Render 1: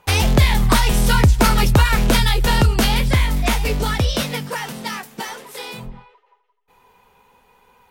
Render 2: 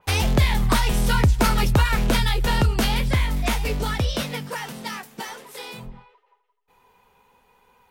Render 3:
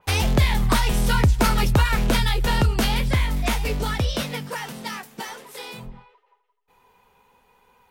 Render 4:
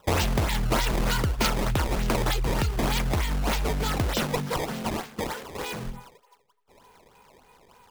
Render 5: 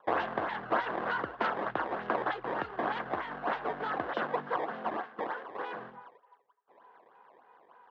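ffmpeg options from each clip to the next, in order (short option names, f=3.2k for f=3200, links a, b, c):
-af "adynamicequalizer=threshold=0.0251:dfrequency=4100:dqfactor=0.7:tfrequency=4100:tqfactor=0.7:attack=5:release=100:ratio=0.375:range=1.5:mode=cutabove:tftype=highshelf,volume=-4.5dB"
-af anull
-filter_complex "[0:a]acrossover=split=3400[a][b];[a]acompressor=threshold=-27dB:ratio=6[c];[c][b]amix=inputs=2:normalize=0,acrusher=samples=18:mix=1:aa=0.000001:lfo=1:lforange=28.8:lforate=3.3,volume=3.5dB"
-af "highpass=310,equalizer=f=320:t=q:w=4:g=4,equalizer=f=510:t=q:w=4:g=3,equalizer=f=730:t=q:w=4:g=8,equalizer=f=1.1k:t=q:w=4:g=8,equalizer=f=1.6k:t=q:w=4:g=9,equalizer=f=2.4k:t=q:w=4:g=-8,lowpass=f=2.8k:w=0.5412,lowpass=f=2.8k:w=1.3066,volume=-7.5dB"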